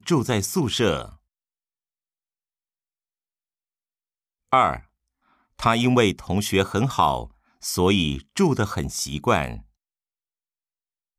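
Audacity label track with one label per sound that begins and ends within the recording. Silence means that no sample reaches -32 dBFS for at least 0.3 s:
4.530000	4.790000	sound
5.590000	7.260000	sound
7.640000	9.590000	sound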